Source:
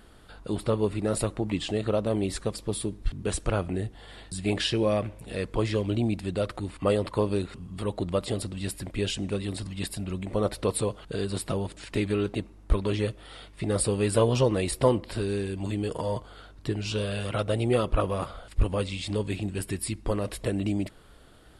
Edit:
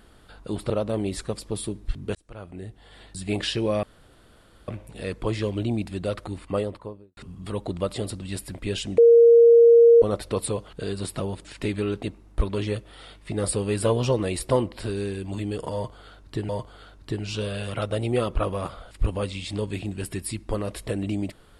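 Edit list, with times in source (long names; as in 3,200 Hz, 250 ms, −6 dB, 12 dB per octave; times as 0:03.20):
0:00.70–0:01.87: remove
0:03.32–0:04.44: fade in
0:05.00: splice in room tone 0.85 s
0:06.66–0:07.49: fade out and dull
0:09.30–0:10.34: beep over 467 Hz −9.5 dBFS
0:16.06–0:16.81: repeat, 2 plays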